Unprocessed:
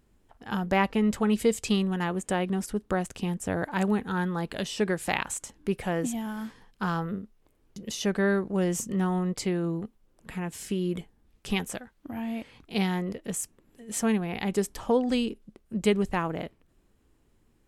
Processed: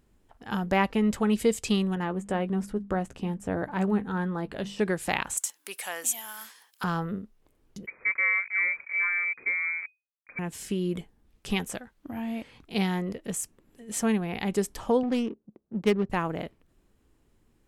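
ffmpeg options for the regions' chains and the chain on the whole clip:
-filter_complex "[0:a]asettb=1/sr,asplit=3[a][b][c];[a]atrim=end=1.954[d];[b]atrim=start=1.95:end=4.79,asetpts=PTS-STARTPTS,afade=t=in:d=0.004:c=qsin,afade=t=out:st=2.836:d=0.004:c=qsin,highshelf=f=2.4k:g=-11,bandreject=f=50:t=h:w=6,bandreject=f=100:t=h:w=6,bandreject=f=150:t=h:w=6,bandreject=f=200:t=h:w=6,bandreject=f=250:t=h:w=6,asplit=2[e][f];[f]adelay=15,volume=-11.5dB[g];[e][g]amix=inputs=2:normalize=0,atrim=end_sample=125244[h];[c]atrim=start=4.786[i];[d][h]acrossfade=d=0.004:c1=hsin:c2=qsin[j];[j][i]acrossfade=d=0.004:c1=qsin:c2=hsin,asettb=1/sr,asplit=3[k][l][m];[k]atrim=end=5.374[n];[l]atrim=start=5.37:end=6.84,asetpts=PTS-STARTPTS,afade=t=in:d=0.004:c=qsin,afade=t=out:st=1.466:d=0.004:c=qsin,highpass=890,aemphasis=mode=production:type=75fm[o];[m]atrim=start=6.836[p];[n][o]acrossfade=d=0.004:c1=hsin:c2=qsin[q];[q][p]acrossfade=d=0.004:c1=qsin:c2=hsin,asettb=1/sr,asplit=3[r][s][t];[r]atrim=end=7.864[u];[s]atrim=start=7.86:end=10.39,asetpts=PTS-STARTPTS,afade=t=in:d=0.004:c=qsin,afade=t=out:st=2.526:d=0.004:c=qsin,asuperstop=centerf=1700:order=12:qfactor=3.8,aeval=exprs='sgn(val(0))*max(abs(val(0))-0.00631,0)':c=same,lowpass=f=2.1k:t=q:w=0.5098,lowpass=f=2.1k:t=q:w=0.6013,lowpass=f=2.1k:t=q:w=0.9,lowpass=f=2.1k:t=q:w=2.563,afreqshift=-2500[v];[t]atrim=start=10.386[w];[u][v]acrossfade=d=0.004:c1=hsin:c2=qsin[x];[x][w]acrossfade=d=0.004:c1=qsin:c2=hsin,asettb=1/sr,asplit=3[y][z][aa];[y]atrim=end=15.034[ab];[z]atrim=start=15.03:end=16.1,asetpts=PTS-STARTPTS,afade=t=in:d=0.004:c=qsin,afade=t=out:st=1.066:d=0.004:c=qsin,highpass=140,lowpass=7k,adynamicsmooth=sensitivity=3.5:basefreq=670[ac];[aa]atrim=start=16.096[ad];[ab][ac]acrossfade=d=0.004:c1=hsin:c2=qsin[ae];[ae][ad]acrossfade=d=0.004:c1=qsin:c2=hsin"

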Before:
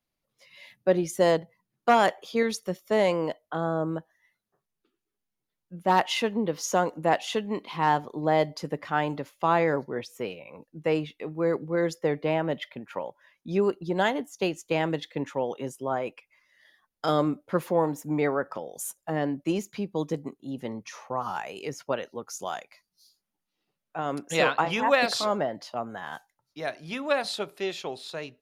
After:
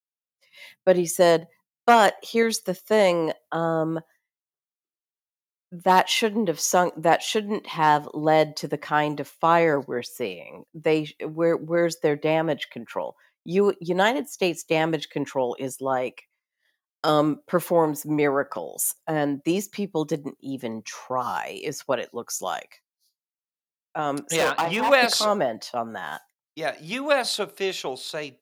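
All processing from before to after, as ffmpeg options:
-filter_complex "[0:a]asettb=1/sr,asplit=3[a][b][c];[a]atrim=end=24.364[d];[b]atrim=start=24.36:end=24.92,asetpts=PTS-STARTPTS,afade=t=in:d=0.004:c=qsin,afade=t=out:st=0.556:d=0.004:c=qsin,aemphasis=mode=reproduction:type=50kf,asoftclip=type=hard:threshold=-22dB[e];[c]atrim=start=24.916[f];[d][e]acrossfade=d=0.004:c1=hsin:c2=qsin[g];[g][f]acrossfade=d=0.004:c1=qsin:c2=hsin,agate=range=-33dB:threshold=-48dB:ratio=3:detection=peak,highpass=f=150:p=1,highshelf=f=8.5k:g=10,volume=4.5dB"

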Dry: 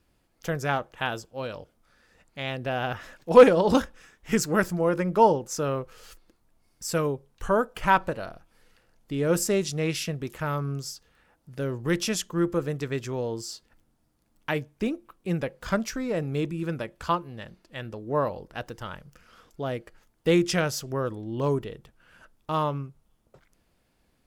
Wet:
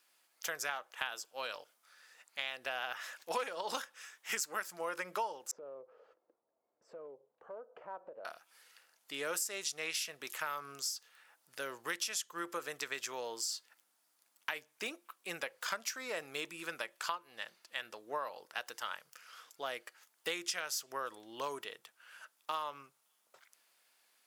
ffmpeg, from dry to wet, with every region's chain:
-filter_complex "[0:a]asettb=1/sr,asplit=3[a][b][c];[a]atrim=end=5.514[d];[b]atrim=start=5.51:end=8.25,asetpts=PTS-STARTPTS,afade=t=in:d=0.004:c=qsin,afade=t=out:st=2.736:d=0.004:c=qsin,lowpass=f=530:t=q:w=2.4,acompressor=threshold=-36dB:ratio=5:attack=3.2:release=140:knee=1:detection=peak[e];[c]atrim=start=8.246[f];[d][e]acrossfade=d=0.004:c1=hsin:c2=qsin[g];[g][f]acrossfade=d=0.004:c1=qsin:c2=hsin,highpass=1.3k,equalizer=f=2.1k:w=0.44:g=-4.5,acompressor=threshold=-41dB:ratio=8,volume=7dB"

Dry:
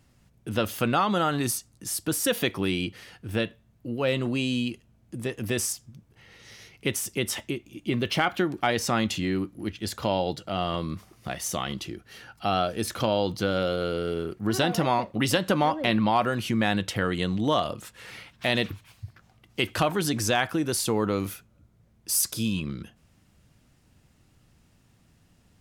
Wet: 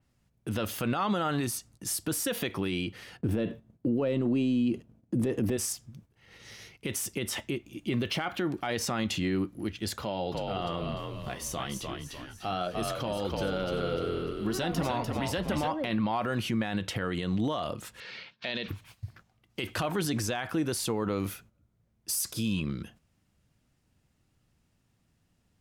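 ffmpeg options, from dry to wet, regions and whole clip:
-filter_complex "[0:a]asettb=1/sr,asplit=3[a][b][c];[a]atrim=end=3.174[d];[b]atrim=start=3.17:end=5.57,asetpts=PTS-STARTPTS,afade=t=in:d=0.004:c=qsin,afade=t=out:st=2.396:d=0.004:c=qsin,agate=range=-10dB:threshold=-59dB:ratio=16:release=100:detection=peak,equalizer=f=280:w=0.34:g=15[e];[c]atrim=start=5.566[f];[d][e]acrossfade=d=0.004:c1=hsin:c2=qsin[g];[g][f]acrossfade=d=0.004:c1=qsin:c2=hsin,asettb=1/sr,asplit=3[h][i][j];[h]atrim=end=10.024[k];[i]atrim=start=10.02:end=15.68,asetpts=PTS-STARTPTS,afade=t=in:d=0.004:c=qsin,afade=t=out:st=5.656:d=0.004:c=qsin,flanger=delay=4.6:depth=4.7:regen=-62:speed=1.1:shape=triangular,asplit=6[l][m][n][o][p][q];[m]adelay=297,afreqshift=-50,volume=-5dB[r];[n]adelay=594,afreqshift=-100,volume=-12.7dB[s];[o]adelay=891,afreqshift=-150,volume=-20.5dB[t];[p]adelay=1188,afreqshift=-200,volume=-28.2dB[u];[q]adelay=1485,afreqshift=-250,volume=-36dB[v];[l][r][s][t][u][v]amix=inputs=6:normalize=0,atrim=end_sample=249606[w];[j]atrim=start=15.676[x];[k][w]acrossfade=d=0.004:c1=hsin:c2=qsin[y];[y][x]acrossfade=d=0.004:c1=qsin:c2=hsin,asettb=1/sr,asplit=3[z][aa][ab];[z]atrim=end=18.004[ac];[aa]atrim=start=18:end=18.68,asetpts=PTS-STARTPTS,afade=t=in:d=0.004:c=qsin,afade=t=out:st=0.676:d=0.004:c=qsin,highpass=210,equalizer=f=300:t=q:w=4:g=-8,equalizer=f=760:t=q:w=4:g=-7,equalizer=f=1.2k:t=q:w=4:g=-5,equalizer=f=2k:t=q:w=4:g=4,equalizer=f=4.3k:t=q:w=4:g=5,lowpass=f=5.2k:w=0.5412,lowpass=f=5.2k:w=1.3066,bandreject=f=2k:w=7.7[ad];[ab]atrim=start=18.676[ae];[ac][ad]acrossfade=d=0.004:c1=hsin:c2=qsin[af];[af][ae]acrossfade=d=0.004:c1=qsin:c2=hsin,agate=range=-10dB:threshold=-52dB:ratio=16:detection=peak,alimiter=limit=-20.5dB:level=0:latency=1:release=45,adynamicequalizer=threshold=0.00501:dfrequency=4000:dqfactor=0.7:tfrequency=4000:tqfactor=0.7:attack=5:release=100:ratio=0.375:range=2:mode=cutabove:tftype=highshelf"

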